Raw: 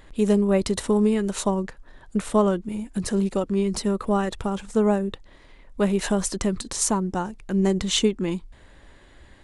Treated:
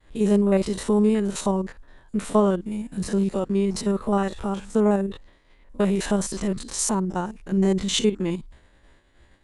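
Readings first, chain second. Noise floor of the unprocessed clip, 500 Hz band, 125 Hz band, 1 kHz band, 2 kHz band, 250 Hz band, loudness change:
−51 dBFS, 0.0 dB, +0.5 dB, −0.5 dB, −1.5 dB, +0.5 dB, 0.0 dB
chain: spectrum averaged block by block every 50 ms
downward expander −44 dBFS
level +1 dB

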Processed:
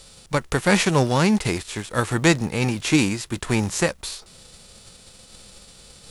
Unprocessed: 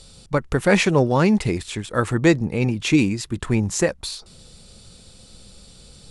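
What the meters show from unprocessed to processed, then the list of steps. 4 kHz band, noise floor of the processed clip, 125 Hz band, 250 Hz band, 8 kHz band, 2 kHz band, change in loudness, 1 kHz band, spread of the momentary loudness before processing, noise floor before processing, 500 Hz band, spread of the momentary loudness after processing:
+2.0 dB, −49 dBFS, −1.5 dB, −2.0 dB, +2.0 dB, +0.5 dB, −1.0 dB, +1.0 dB, 10 LU, −48 dBFS, −3.0 dB, 10 LU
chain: spectral envelope flattened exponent 0.6
level −1.5 dB

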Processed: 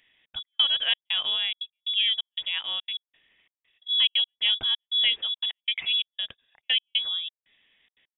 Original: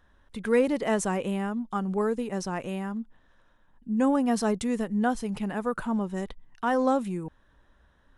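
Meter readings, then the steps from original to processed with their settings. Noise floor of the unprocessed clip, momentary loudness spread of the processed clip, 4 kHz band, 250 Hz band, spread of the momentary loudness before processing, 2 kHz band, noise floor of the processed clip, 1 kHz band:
−63 dBFS, 13 LU, +26.0 dB, below −35 dB, 12 LU, +4.0 dB, below −85 dBFS, −17.0 dB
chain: high-pass filter 120 Hz 24 dB per octave
gate pattern "xxx.x..xxxx..xx" 177 BPM −60 dB
voice inversion scrambler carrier 3,600 Hz
level +2 dB

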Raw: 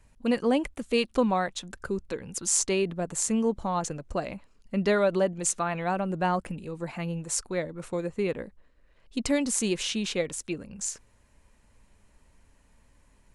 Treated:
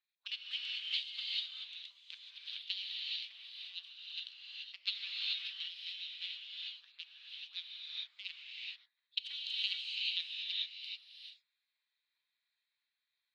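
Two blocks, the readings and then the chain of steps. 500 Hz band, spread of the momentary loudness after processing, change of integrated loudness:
below −40 dB, 12 LU, −11.0 dB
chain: adaptive Wiener filter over 15 samples
gate on every frequency bin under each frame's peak −25 dB weak
transient designer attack +9 dB, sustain +5 dB
flat-topped band-pass 3,400 Hz, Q 2.8
reverb whose tail is shaped and stops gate 460 ms rising, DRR −3 dB
level +4 dB

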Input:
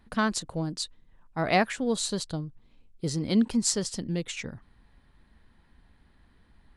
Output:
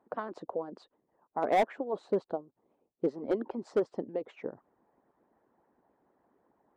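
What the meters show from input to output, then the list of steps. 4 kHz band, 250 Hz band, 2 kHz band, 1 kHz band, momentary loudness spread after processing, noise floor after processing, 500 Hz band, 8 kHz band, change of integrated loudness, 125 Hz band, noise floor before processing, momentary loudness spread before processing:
−19.5 dB, −10.0 dB, −11.0 dB, −1.5 dB, 13 LU, −80 dBFS, +1.0 dB, below −30 dB, −5.0 dB, −17.5 dB, −62 dBFS, 12 LU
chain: flat-topped band-pass 530 Hz, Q 0.88
harmonic and percussive parts rebalanced harmonic −17 dB
hard clipping −28 dBFS, distortion −10 dB
level +7.5 dB

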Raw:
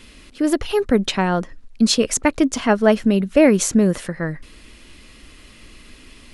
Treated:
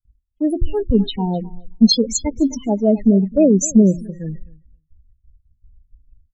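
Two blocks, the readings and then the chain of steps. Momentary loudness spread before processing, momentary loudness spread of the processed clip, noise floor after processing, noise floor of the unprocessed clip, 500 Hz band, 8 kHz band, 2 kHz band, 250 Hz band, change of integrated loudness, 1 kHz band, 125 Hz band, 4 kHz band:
12 LU, 15 LU, −68 dBFS, −46 dBFS, −1.5 dB, −0.5 dB, below −20 dB, +2.5 dB, +1.5 dB, −7.5 dB, +3.5 dB, +2.0 dB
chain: noise gate with hold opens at −33 dBFS
in parallel at +1 dB: brickwall limiter −11.5 dBFS, peak gain reduction 9.5 dB
on the sum: bass and treble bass +6 dB, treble +6 dB
hum removal 86.55 Hz, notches 4
spectral peaks only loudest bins 8
on a send: repeating echo 261 ms, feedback 22%, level −17 dB
on the sum: multiband upward and downward expander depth 100%
level −7 dB

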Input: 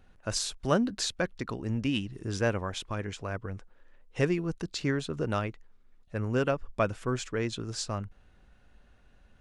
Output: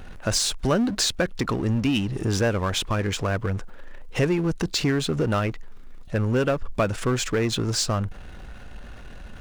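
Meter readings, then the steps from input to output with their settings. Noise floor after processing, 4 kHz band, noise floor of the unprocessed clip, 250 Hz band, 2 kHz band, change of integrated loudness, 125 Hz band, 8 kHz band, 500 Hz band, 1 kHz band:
−40 dBFS, +9.5 dB, −60 dBFS, +7.0 dB, +6.0 dB, +7.0 dB, +8.0 dB, +9.5 dB, +6.0 dB, +6.0 dB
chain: power curve on the samples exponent 0.7
downward compressor 2 to 1, threshold −28 dBFS, peak gain reduction 6 dB
level +6 dB

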